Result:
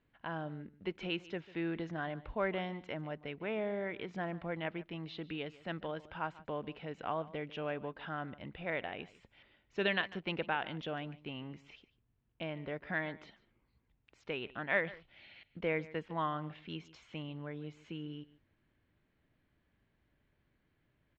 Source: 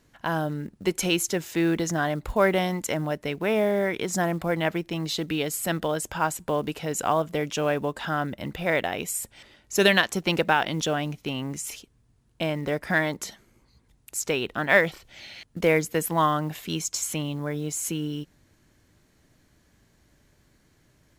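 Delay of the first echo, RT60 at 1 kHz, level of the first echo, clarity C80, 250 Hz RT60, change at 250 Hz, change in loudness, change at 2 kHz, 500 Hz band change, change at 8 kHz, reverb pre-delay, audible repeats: 146 ms, no reverb audible, −19.0 dB, no reverb audible, no reverb audible, −13.5 dB, −13.5 dB, −12.0 dB, −13.5 dB, below −40 dB, no reverb audible, 1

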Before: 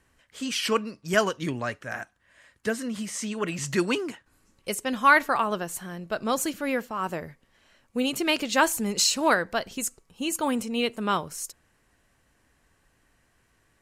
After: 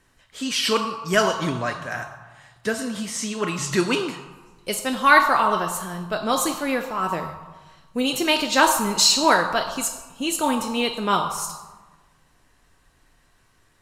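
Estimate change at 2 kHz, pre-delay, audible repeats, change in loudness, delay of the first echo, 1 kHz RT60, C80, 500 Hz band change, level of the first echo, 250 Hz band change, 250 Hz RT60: +4.0 dB, 3 ms, no echo audible, +5.0 dB, no echo audible, 1.3 s, 8.5 dB, +3.5 dB, no echo audible, +3.0 dB, 1.5 s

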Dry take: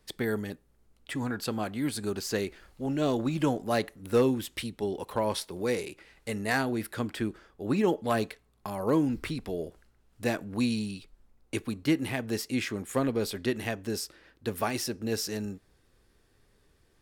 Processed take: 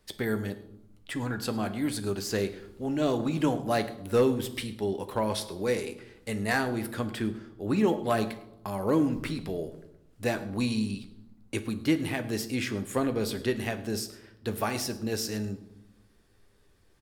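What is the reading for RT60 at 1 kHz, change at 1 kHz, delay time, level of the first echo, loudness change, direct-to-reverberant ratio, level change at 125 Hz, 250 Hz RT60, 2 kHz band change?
0.85 s, +1.0 dB, 104 ms, −21.5 dB, +0.5 dB, 8.5 dB, +1.5 dB, 1.3 s, +0.5 dB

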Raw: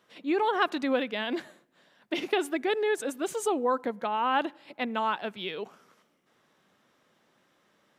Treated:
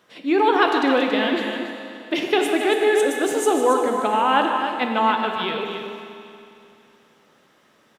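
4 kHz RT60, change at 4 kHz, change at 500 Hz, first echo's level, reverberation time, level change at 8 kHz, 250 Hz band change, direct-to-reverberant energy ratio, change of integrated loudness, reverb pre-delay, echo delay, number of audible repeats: 2.7 s, +9.5 dB, +9.5 dB, −11.5 dB, 2.7 s, +9.5 dB, +9.5 dB, 1.5 dB, +9.5 dB, 10 ms, 153 ms, 2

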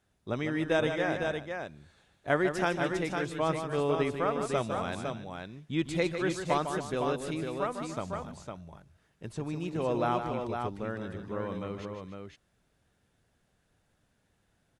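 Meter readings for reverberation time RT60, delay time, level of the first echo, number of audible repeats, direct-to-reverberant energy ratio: no reverb audible, 153 ms, −8.0 dB, 3, no reverb audible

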